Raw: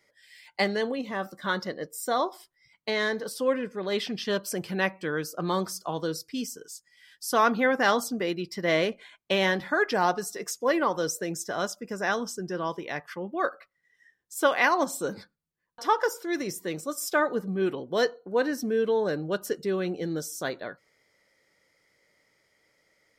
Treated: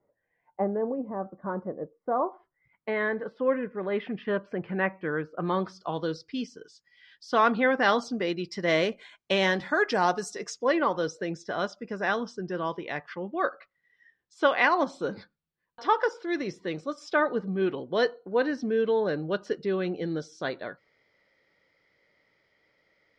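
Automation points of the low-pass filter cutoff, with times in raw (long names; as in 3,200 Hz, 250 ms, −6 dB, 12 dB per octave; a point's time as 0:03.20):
low-pass filter 24 dB per octave
0:01.93 1,000 Hz
0:02.93 2,200 Hz
0:05.29 2,200 Hz
0:05.85 4,300 Hz
0:07.70 4,300 Hz
0:08.77 7,900 Hz
0:10.26 7,900 Hz
0:10.81 4,400 Hz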